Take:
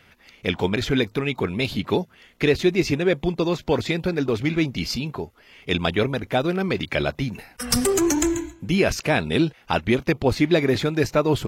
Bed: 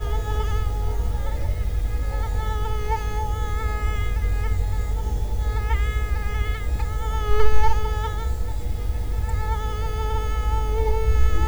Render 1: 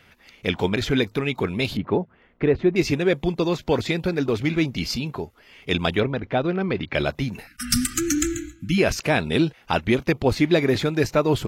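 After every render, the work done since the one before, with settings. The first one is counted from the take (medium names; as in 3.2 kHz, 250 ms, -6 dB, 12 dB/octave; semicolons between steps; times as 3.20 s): 1.77–2.76 s: low-pass 1.4 kHz; 6.00–6.95 s: distance through air 230 m; 7.47–8.78 s: brick-wall FIR band-stop 340–1200 Hz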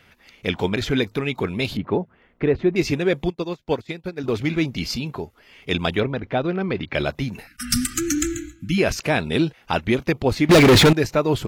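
3.30–4.24 s: upward expansion 2.5:1, over -32 dBFS; 10.49–10.93 s: waveshaping leveller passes 5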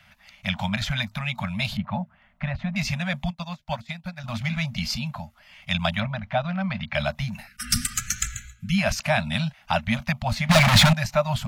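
Chebyshev band-stop 230–580 Hz, order 5; treble shelf 12 kHz -3 dB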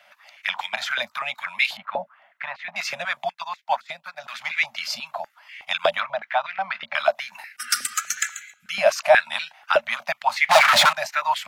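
step-sequenced high-pass 8.2 Hz 550–2000 Hz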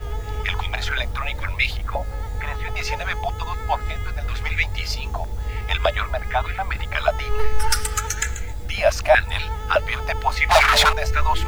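add bed -3.5 dB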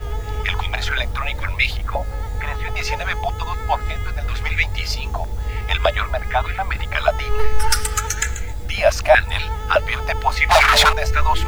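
trim +2.5 dB; peak limiter -1 dBFS, peak gain reduction 2 dB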